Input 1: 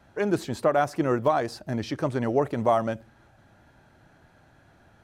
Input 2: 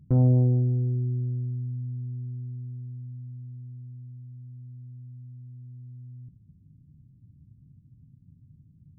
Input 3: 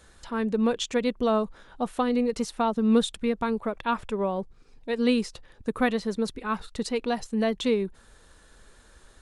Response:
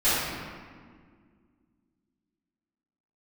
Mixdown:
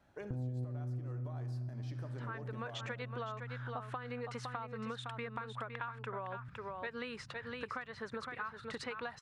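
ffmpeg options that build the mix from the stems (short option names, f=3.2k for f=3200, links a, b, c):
-filter_complex "[0:a]acompressor=threshold=-31dB:ratio=4,volume=-12dB,asplit=4[a][b][c][d];[b]volume=-23.5dB[e];[c]volume=-19.5dB[f];[1:a]adelay=200,volume=0dB[g];[2:a]dynaudnorm=f=150:g=13:m=12dB,bandpass=f=1.5k:t=q:w=2.1:csg=0,acompressor=threshold=-28dB:ratio=6,adelay=1950,volume=0dB,asplit=2[h][i];[i]volume=-8dB[j];[d]apad=whole_len=405108[k];[g][k]sidechaincompress=threshold=-48dB:ratio=8:attack=37:release=271[l];[3:a]atrim=start_sample=2205[m];[e][m]afir=irnorm=-1:irlink=0[n];[f][j]amix=inputs=2:normalize=0,aecho=0:1:511:1[o];[a][l][h][n][o]amix=inputs=5:normalize=0,acompressor=threshold=-40dB:ratio=4"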